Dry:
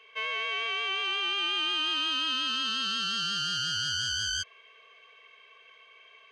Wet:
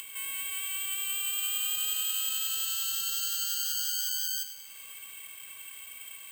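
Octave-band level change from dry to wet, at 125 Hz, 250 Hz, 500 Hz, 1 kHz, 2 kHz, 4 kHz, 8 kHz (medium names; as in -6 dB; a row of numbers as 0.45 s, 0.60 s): under -20 dB, under -20 dB, under -20 dB, -14.5 dB, -9.5 dB, -6.0 dB, +8.0 dB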